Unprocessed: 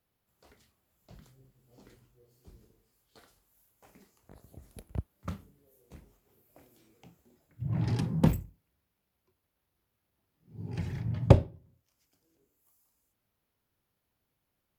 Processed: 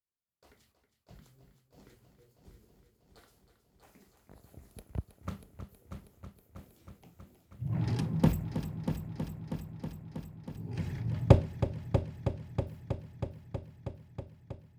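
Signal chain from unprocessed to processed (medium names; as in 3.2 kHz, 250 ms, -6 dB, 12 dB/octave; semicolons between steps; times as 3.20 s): gate with hold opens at -56 dBFS; multi-head delay 320 ms, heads first and second, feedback 73%, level -11.5 dB; trim -1.5 dB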